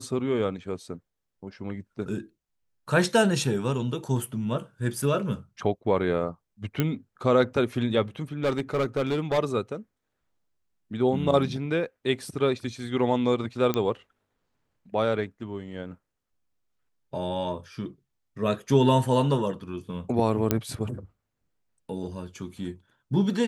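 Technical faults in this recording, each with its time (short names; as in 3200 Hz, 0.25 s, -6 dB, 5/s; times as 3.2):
6.8 pop -11 dBFS
8.43–9.39 clipped -20.5 dBFS
13.74 pop -12 dBFS
20.51 pop -7 dBFS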